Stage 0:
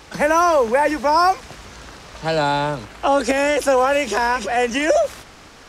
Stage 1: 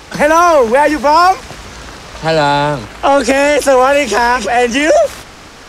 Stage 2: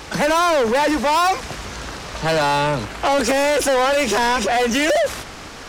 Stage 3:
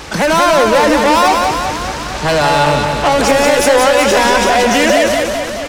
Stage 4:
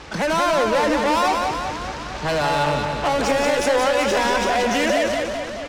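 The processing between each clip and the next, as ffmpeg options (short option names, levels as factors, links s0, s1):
-af "acontrast=83,volume=1.19"
-af "asoftclip=type=tanh:threshold=0.631,aeval=exprs='0.562*(cos(1*acos(clip(val(0)/0.562,-1,1)))-cos(1*PI/2))+0.1*(cos(5*acos(clip(val(0)/0.562,-1,1)))-cos(5*PI/2))':c=same,volume=0.501"
-filter_complex "[0:a]asplit=2[s0][s1];[s1]asoftclip=type=tanh:threshold=0.112,volume=0.266[s2];[s0][s2]amix=inputs=2:normalize=0,aecho=1:1:180|378|595.8|835.4|1099:0.631|0.398|0.251|0.158|0.1,volume=1.5"
-af "adynamicsmooth=sensitivity=1:basefreq=6200,volume=0.376"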